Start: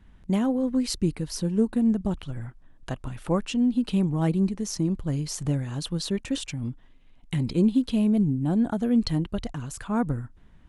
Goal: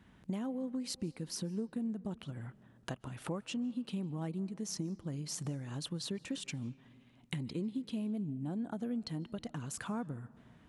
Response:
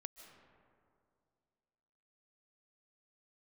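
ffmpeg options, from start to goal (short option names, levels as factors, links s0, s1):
-filter_complex "[0:a]acompressor=threshold=0.0158:ratio=5,highpass=120,asplit=2[s0][s1];[1:a]atrim=start_sample=2205[s2];[s1][s2]afir=irnorm=-1:irlink=0,volume=0.447[s3];[s0][s3]amix=inputs=2:normalize=0,volume=0.794"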